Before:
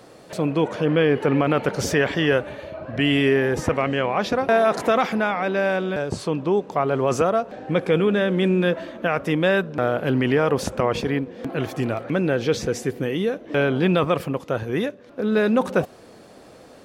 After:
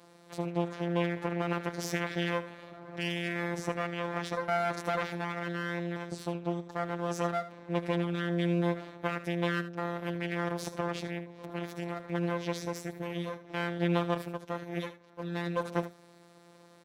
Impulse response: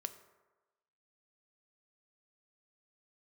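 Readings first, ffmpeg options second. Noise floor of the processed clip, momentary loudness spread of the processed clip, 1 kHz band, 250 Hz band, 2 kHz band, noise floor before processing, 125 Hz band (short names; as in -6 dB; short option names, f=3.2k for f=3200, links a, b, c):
-57 dBFS, 8 LU, -10.0 dB, -11.5 dB, -11.0 dB, -47 dBFS, -9.0 dB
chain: -filter_complex "[0:a]afftfilt=real='hypot(re,im)*cos(PI*b)':imag='0':win_size=1024:overlap=0.75,aeval=exprs='max(val(0),0)':c=same,highpass=76,asplit=2[a][b];[b]aecho=0:1:76:0.211[c];[a][c]amix=inputs=2:normalize=0,volume=-6dB"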